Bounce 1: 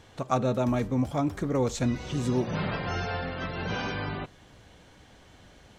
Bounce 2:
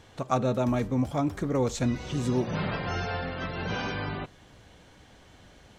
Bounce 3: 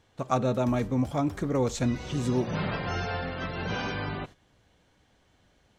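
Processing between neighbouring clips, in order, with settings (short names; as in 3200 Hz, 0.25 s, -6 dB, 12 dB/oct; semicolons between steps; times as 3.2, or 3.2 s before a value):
nothing audible
gate -43 dBFS, range -11 dB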